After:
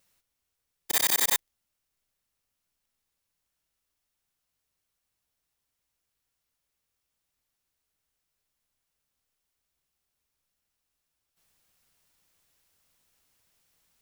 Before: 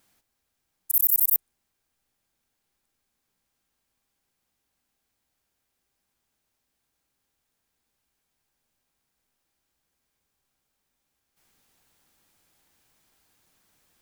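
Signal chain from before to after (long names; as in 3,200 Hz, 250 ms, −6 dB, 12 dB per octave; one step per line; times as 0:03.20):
samples in bit-reversed order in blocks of 128 samples
level −3.5 dB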